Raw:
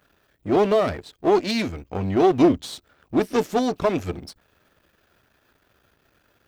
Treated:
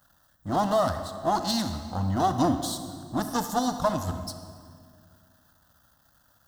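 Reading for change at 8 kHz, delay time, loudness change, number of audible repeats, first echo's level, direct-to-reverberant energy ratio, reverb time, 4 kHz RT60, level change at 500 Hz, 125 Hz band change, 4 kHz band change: +5.5 dB, no echo, -5.5 dB, no echo, no echo, 8.0 dB, 2.1 s, 1.5 s, -8.5 dB, -0.5 dB, -0.5 dB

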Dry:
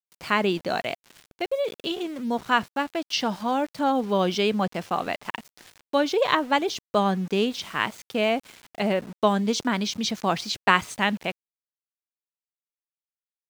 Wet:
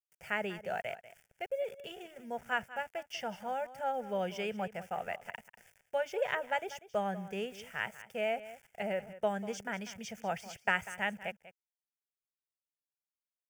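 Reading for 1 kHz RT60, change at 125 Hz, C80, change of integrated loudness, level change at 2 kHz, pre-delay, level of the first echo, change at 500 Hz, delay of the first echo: no reverb, -14.5 dB, no reverb, -11.5 dB, -8.5 dB, no reverb, -15.5 dB, -10.0 dB, 193 ms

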